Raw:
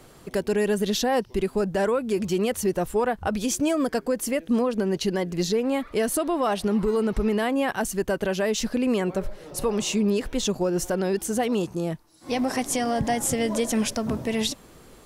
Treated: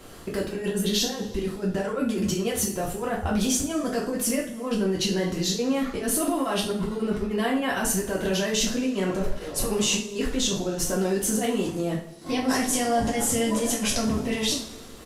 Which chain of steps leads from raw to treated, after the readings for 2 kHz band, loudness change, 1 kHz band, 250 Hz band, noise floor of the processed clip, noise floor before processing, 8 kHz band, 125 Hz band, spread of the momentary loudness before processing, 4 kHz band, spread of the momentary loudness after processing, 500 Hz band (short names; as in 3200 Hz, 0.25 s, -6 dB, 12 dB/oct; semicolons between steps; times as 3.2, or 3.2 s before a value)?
0.0 dB, -0.5 dB, -2.0 dB, -0.5 dB, -41 dBFS, -50 dBFS, +4.5 dB, +0.5 dB, 4 LU, +4.0 dB, 6 LU, -3.0 dB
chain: negative-ratio compressor -28 dBFS, ratio -1; downsampling 32000 Hz; level quantiser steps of 10 dB; two-slope reverb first 0.39 s, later 1.8 s, from -19 dB, DRR -4.5 dB